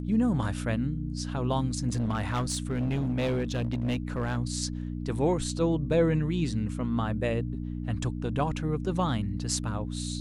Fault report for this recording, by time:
mains hum 60 Hz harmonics 5 −34 dBFS
0:01.88–0:04.37: clipping −24 dBFS

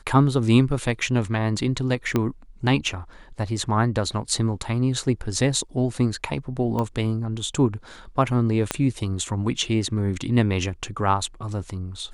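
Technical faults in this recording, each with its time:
0:02.16: click −9 dBFS
0:06.79: click −15 dBFS
0:08.71: click −7 dBFS

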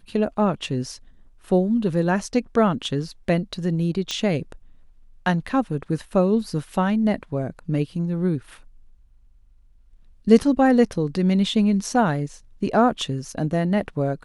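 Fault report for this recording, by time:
0:04.11: click −12 dBFS

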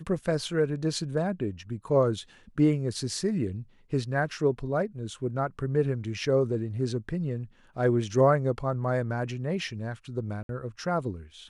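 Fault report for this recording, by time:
0:10.43–0:10.49: drop-out 62 ms

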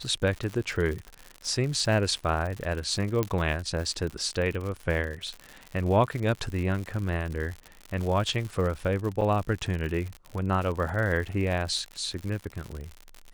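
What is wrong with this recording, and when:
surface crackle 94 per second −32 dBFS
0:03.23: click −12 dBFS
0:09.21–0:09.22: drop-out 5.5 ms

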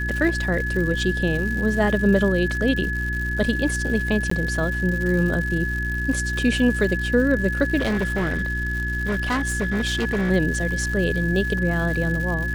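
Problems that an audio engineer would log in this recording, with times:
surface crackle 210 per second −29 dBFS
mains hum 60 Hz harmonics 6 −27 dBFS
whistle 1,700 Hz −26 dBFS
0:04.30–0:04.31: drop-out 14 ms
0:07.78–0:10.31: clipping −19 dBFS

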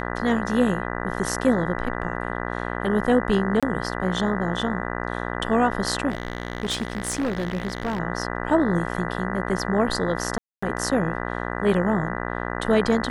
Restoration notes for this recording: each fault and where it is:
mains buzz 60 Hz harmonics 33 −29 dBFS
0:03.60–0:03.63: drop-out 26 ms
0:06.09–0:08.00: clipping −21 dBFS
0:10.38–0:10.62: drop-out 245 ms

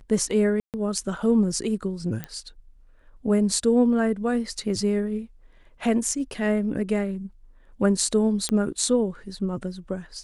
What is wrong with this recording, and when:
0:00.60–0:00.74: drop-out 138 ms
0:02.24: click −17 dBFS
0:08.49: click −11 dBFS

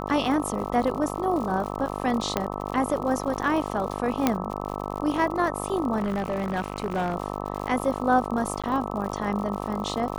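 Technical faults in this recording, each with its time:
mains buzz 50 Hz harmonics 26 −32 dBFS
surface crackle 91 per second −32 dBFS
0:02.37: click −9 dBFS
0:04.27: click −6 dBFS
0:05.97–0:07.14: clipping −22 dBFS
0:08.62–0:08.64: drop-out 16 ms

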